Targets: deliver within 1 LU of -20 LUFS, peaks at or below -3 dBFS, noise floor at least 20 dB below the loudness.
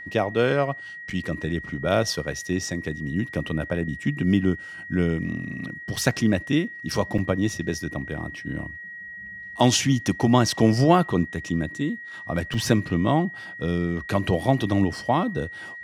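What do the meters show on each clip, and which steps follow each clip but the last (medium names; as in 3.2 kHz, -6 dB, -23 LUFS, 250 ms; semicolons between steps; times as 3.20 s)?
dropouts 4; longest dropout 4.4 ms; steady tone 1.9 kHz; tone level -36 dBFS; loudness -24.5 LUFS; peak level -4.0 dBFS; loudness target -20.0 LUFS
-> interpolate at 1.10/5.96/7.18/12.54 s, 4.4 ms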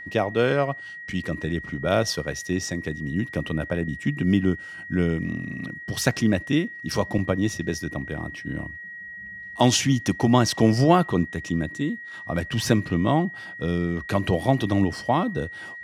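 dropouts 0; steady tone 1.9 kHz; tone level -36 dBFS
-> band-stop 1.9 kHz, Q 30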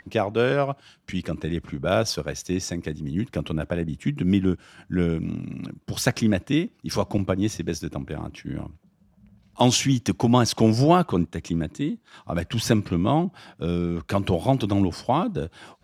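steady tone not found; loudness -24.5 LUFS; peak level -4.0 dBFS; loudness target -20.0 LUFS
-> trim +4.5 dB; peak limiter -3 dBFS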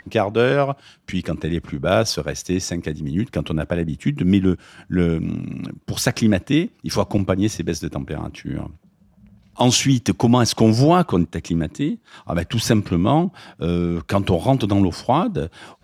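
loudness -20.5 LUFS; peak level -3.0 dBFS; noise floor -56 dBFS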